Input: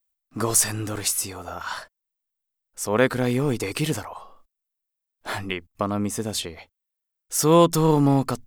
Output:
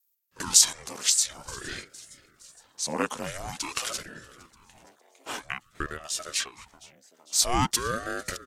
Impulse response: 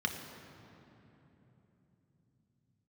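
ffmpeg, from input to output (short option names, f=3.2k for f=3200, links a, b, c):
-filter_complex "[0:a]adynamicequalizer=threshold=0.00891:dfrequency=1700:dqfactor=4.1:tfrequency=1700:tqfactor=4.1:attack=5:release=100:ratio=0.375:range=1.5:mode=cutabove:tftype=bell,asplit=6[a][b][c][d][e][f];[b]adelay=461,afreqshift=130,volume=-22.5dB[g];[c]adelay=922,afreqshift=260,volume=-26.8dB[h];[d]adelay=1383,afreqshift=390,volume=-31.1dB[i];[e]adelay=1844,afreqshift=520,volume=-35.4dB[j];[f]adelay=2305,afreqshift=650,volume=-39.7dB[k];[a][g][h][i][j][k]amix=inputs=6:normalize=0,asetrate=33038,aresample=44100,atempo=1.33484,highpass=f=340:w=0.5412,highpass=f=340:w=1.3066,highshelf=f=2.7k:g=11,aeval=exprs='val(0)*sin(2*PI*540*n/s+540*0.8/0.49*sin(2*PI*0.49*n/s))':c=same,volume=-4dB"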